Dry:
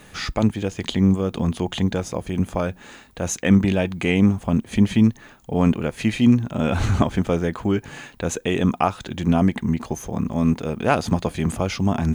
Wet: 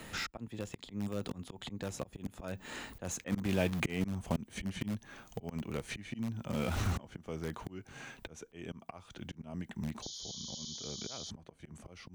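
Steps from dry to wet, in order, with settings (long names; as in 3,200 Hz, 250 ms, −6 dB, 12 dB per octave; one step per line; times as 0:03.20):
source passing by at 0:03.53, 22 m/s, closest 19 metres
volume swells 692 ms
in parallel at −11.5 dB: wrap-around overflow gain 33.5 dB
on the sum: sound drawn into the spectrogram noise, 0:10.02–0:11.31, 3,000–7,000 Hz −48 dBFS
multiband upward and downward compressor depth 40%
level +2.5 dB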